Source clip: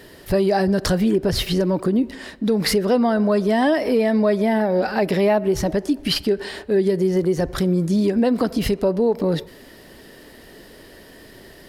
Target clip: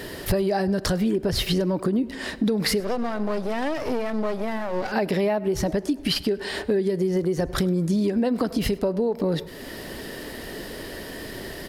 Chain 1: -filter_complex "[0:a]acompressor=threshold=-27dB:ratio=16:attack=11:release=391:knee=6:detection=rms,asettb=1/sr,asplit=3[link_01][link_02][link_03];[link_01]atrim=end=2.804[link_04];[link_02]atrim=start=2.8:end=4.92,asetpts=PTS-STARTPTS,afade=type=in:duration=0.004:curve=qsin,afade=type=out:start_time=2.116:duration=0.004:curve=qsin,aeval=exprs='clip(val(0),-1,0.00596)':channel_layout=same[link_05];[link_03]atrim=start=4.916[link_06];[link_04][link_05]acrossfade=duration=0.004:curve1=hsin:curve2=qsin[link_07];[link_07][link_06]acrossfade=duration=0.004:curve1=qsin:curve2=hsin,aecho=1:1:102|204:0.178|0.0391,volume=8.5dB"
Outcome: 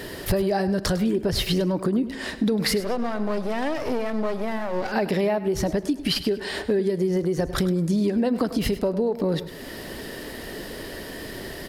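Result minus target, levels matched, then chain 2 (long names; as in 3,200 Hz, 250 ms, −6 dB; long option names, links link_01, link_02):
echo-to-direct +9.5 dB
-filter_complex "[0:a]acompressor=threshold=-27dB:ratio=16:attack=11:release=391:knee=6:detection=rms,asettb=1/sr,asplit=3[link_01][link_02][link_03];[link_01]atrim=end=2.804[link_04];[link_02]atrim=start=2.8:end=4.92,asetpts=PTS-STARTPTS,afade=type=in:duration=0.004:curve=qsin,afade=type=out:start_time=2.116:duration=0.004:curve=qsin,aeval=exprs='clip(val(0),-1,0.00596)':channel_layout=same[link_05];[link_03]atrim=start=4.916[link_06];[link_04][link_05]acrossfade=duration=0.004:curve1=hsin:curve2=qsin[link_07];[link_07][link_06]acrossfade=duration=0.004:curve1=qsin:curve2=hsin,aecho=1:1:102|204:0.0596|0.0131,volume=8.5dB"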